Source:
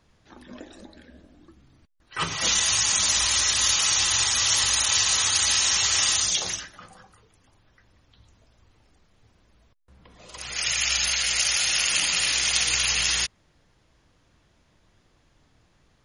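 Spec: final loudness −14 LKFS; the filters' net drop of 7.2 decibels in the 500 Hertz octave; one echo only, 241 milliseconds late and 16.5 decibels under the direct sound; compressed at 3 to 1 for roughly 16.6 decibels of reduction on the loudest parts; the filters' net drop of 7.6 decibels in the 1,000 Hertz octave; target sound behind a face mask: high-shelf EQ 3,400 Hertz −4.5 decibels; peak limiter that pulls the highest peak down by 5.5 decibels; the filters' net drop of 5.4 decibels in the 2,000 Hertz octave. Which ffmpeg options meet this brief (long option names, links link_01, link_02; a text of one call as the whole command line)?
ffmpeg -i in.wav -af "equalizer=frequency=500:width_type=o:gain=-7,equalizer=frequency=1000:width_type=o:gain=-6.5,equalizer=frequency=2000:width_type=o:gain=-3.5,acompressor=threshold=-43dB:ratio=3,alimiter=level_in=7.5dB:limit=-24dB:level=0:latency=1,volume=-7.5dB,highshelf=frequency=3400:gain=-4.5,aecho=1:1:241:0.15,volume=29dB" out.wav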